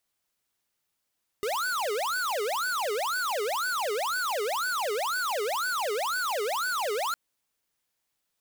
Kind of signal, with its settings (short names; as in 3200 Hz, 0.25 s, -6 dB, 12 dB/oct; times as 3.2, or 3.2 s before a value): siren wail 405–1510 Hz 2/s square -29 dBFS 5.71 s